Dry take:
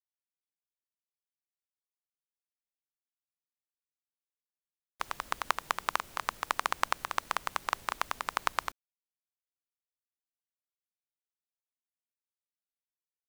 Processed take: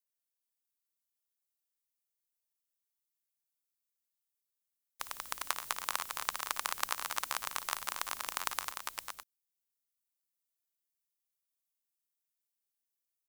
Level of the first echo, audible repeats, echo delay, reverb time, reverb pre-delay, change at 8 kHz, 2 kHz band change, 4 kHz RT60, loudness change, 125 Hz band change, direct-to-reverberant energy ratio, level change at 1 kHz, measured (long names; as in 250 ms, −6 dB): −14.5 dB, 3, 56 ms, no reverb audible, no reverb audible, +5.5 dB, −4.0 dB, no reverb audible, −2.5 dB, −8.0 dB, no reverb audible, −6.0 dB